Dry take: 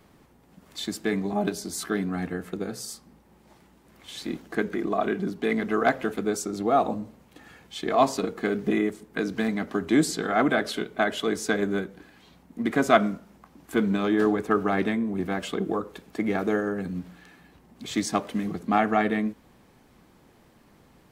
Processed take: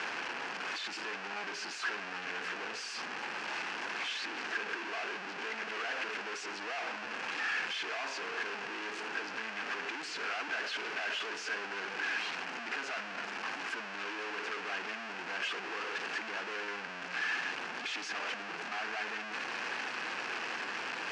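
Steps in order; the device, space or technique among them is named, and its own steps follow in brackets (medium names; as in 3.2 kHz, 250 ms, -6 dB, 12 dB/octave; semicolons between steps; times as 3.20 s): home computer beeper (one-bit comparator; cabinet simulation 560–5300 Hz, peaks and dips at 590 Hz -6 dB, 1.6 kHz +8 dB, 2.6 kHz +8 dB, 3.7 kHz -6 dB); trim -8.5 dB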